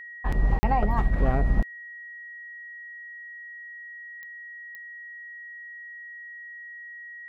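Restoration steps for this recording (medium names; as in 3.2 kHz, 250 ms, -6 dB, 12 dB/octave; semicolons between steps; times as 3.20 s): de-click; band-stop 1.9 kHz, Q 30; interpolate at 0.59 s, 40 ms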